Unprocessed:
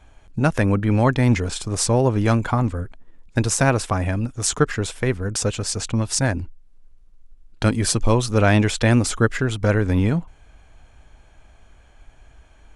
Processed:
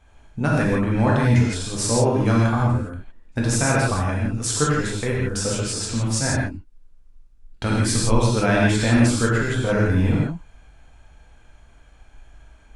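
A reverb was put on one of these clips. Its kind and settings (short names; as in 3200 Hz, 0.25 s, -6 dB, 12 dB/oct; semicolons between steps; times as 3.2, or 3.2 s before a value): non-linear reverb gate 0.19 s flat, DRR -4.5 dB; gain -6 dB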